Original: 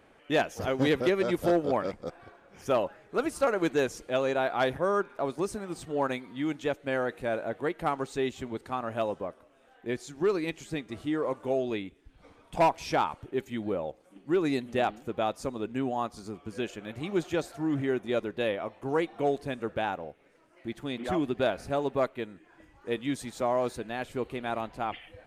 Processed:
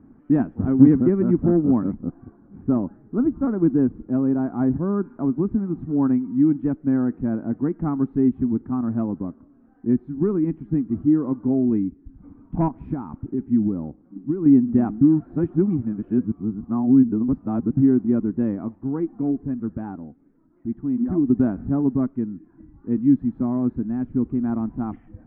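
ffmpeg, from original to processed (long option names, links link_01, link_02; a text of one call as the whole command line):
ffmpeg -i in.wav -filter_complex "[0:a]asettb=1/sr,asplit=3[link_01][link_02][link_03];[link_01]atrim=end=2.014[link_04];[link_02]atrim=start=2.01:end=5.05,asetpts=PTS-STARTPTS,afade=type=in:duration=0.004:curve=qsin,afade=type=out:start_time=3.036:duration=0.004:curve=qsin,highshelf=frequency=2300:gain=-11[link_05];[link_03]atrim=start=5.046[link_06];[link_04][link_05]acrossfade=duration=0.004:curve1=hsin:curve2=qsin[link_07];[link_07][link_06]acrossfade=duration=0.004:curve1=qsin:curve2=hsin,asettb=1/sr,asplit=3[link_08][link_09][link_10];[link_08]atrim=end=12.684[link_11];[link_09]atrim=start=12.68:end=14.46,asetpts=PTS-STARTPTS,afade=type=in:duration=0.004:curve=qsin,afade=type=out:start_time=1.776:duration=0.004:curve=qsin,acompressor=threshold=-30dB:ratio=6:attack=3.2:release=140:knee=1:detection=peak[link_12];[link_10]atrim=start=14.456[link_13];[link_11][link_12]acrossfade=duration=0.004:curve1=hsin:curve2=qsin[link_14];[link_14][link_13]acrossfade=duration=0.004:curve1=qsin:curve2=hsin,asettb=1/sr,asplit=3[link_15][link_16][link_17];[link_15]atrim=end=18.754[link_18];[link_16]atrim=start=18.75:end=21.3,asetpts=PTS-STARTPTS,afade=type=in:duration=0.004:curve=qsin,afade=type=out:start_time=2.546:duration=0.004:curve=qsin,flanger=delay=0.6:depth=3.6:regen=68:speed=1.1:shape=triangular[link_19];[link_17]atrim=start=21.296[link_20];[link_18][link_19]acrossfade=duration=0.004:curve1=hsin:curve2=qsin[link_21];[link_21][link_20]acrossfade=duration=0.004:curve1=qsin:curve2=hsin,asettb=1/sr,asplit=3[link_22][link_23][link_24];[link_22]atrim=end=21.894[link_25];[link_23]atrim=start=21.89:end=24.42,asetpts=PTS-STARTPTS,afade=type=in:duration=0.004:curve=qsin,afade=type=out:start_time=2.526:duration=0.004:curve=qsin,equalizer=frequency=820:width_type=o:width=2.6:gain=-3[link_26];[link_24]atrim=start=24.416[link_27];[link_25][link_26]acrossfade=duration=0.004:curve1=hsin:curve2=qsin[link_28];[link_28][link_27]acrossfade=duration=0.004:curve1=qsin:curve2=hsin,asplit=3[link_29][link_30][link_31];[link_29]atrim=end=15.012[link_32];[link_30]atrim=start=15.008:end=17.772,asetpts=PTS-STARTPTS,areverse[link_33];[link_31]atrim=start=17.768[link_34];[link_32][link_33]acrossfade=duration=0.004:curve1=hsin:curve2=hsin[link_35];[link_35][link_34]acrossfade=duration=0.004:curve1=hsin:curve2=hsin,lowpass=frequency=1300:width=0.5412,lowpass=frequency=1300:width=1.3066,lowshelf=frequency=370:width_type=q:width=3:gain=12.5,volume=-1dB" out.wav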